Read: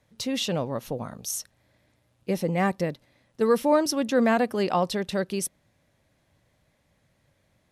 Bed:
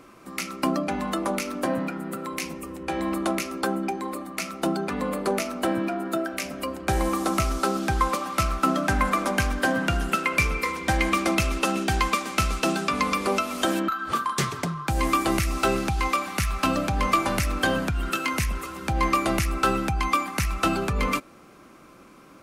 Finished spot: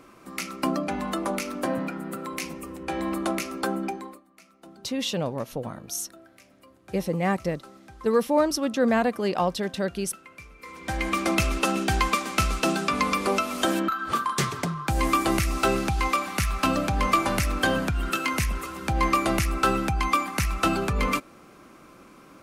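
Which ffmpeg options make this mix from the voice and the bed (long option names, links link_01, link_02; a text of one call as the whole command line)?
ffmpeg -i stem1.wav -i stem2.wav -filter_complex "[0:a]adelay=4650,volume=-0.5dB[link_01];[1:a]volume=22dB,afade=type=out:start_time=3.85:duration=0.36:silence=0.0794328,afade=type=in:start_time=10.58:duration=0.8:silence=0.0668344[link_02];[link_01][link_02]amix=inputs=2:normalize=0" out.wav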